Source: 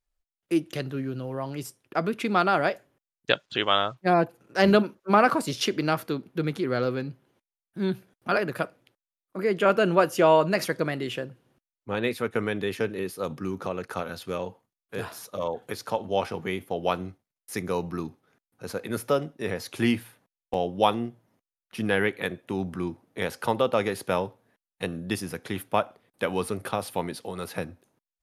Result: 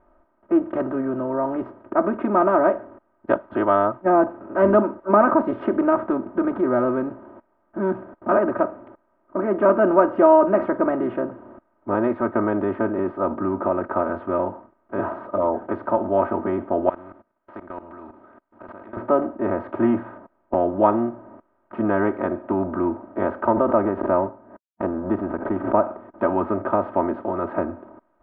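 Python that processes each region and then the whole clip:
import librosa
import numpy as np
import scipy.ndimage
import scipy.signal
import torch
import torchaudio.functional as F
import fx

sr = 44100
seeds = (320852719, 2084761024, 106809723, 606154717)

y = fx.chain(x, sr, fx.pre_emphasis(coefficient=0.9),
    fx.level_steps(step_db=22),
    fx.spectral_comp(ratio=2.0), at=(16.89, 18.97))
y = fx.chain(y, sr, fx.law_mismatch(coded='A'),
    fx.high_shelf(hz=2200.0, db=-11.5),
    fx.pre_swell(db_per_s=130.0), at=(23.52, 25.83))
y = fx.bin_compress(y, sr, power=0.6)
y = scipy.signal.sosfilt(scipy.signal.butter(4, 1300.0, 'lowpass', fs=sr, output='sos'), y)
y = y + 0.98 * np.pad(y, (int(3.2 * sr / 1000.0), 0))[:len(y)]
y = y * 10.0 ** (-1.0 / 20.0)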